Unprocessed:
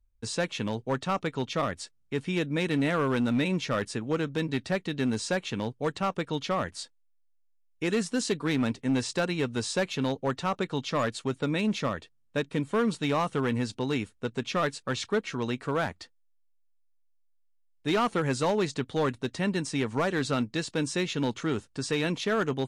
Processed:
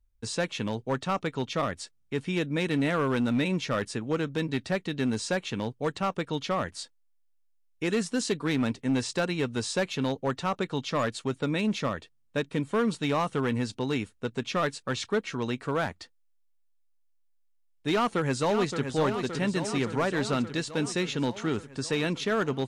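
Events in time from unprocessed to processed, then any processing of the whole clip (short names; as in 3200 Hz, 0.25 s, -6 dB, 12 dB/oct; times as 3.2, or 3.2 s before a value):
17.93–18.93 echo throw 0.57 s, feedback 70%, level -7 dB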